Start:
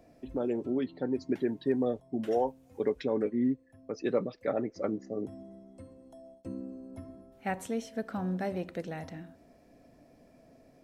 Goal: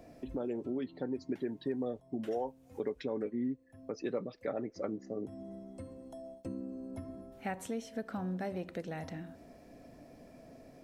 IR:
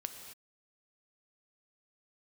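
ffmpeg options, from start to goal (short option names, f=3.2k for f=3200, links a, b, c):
-af "acompressor=threshold=-46dB:ratio=2,volume=4.5dB"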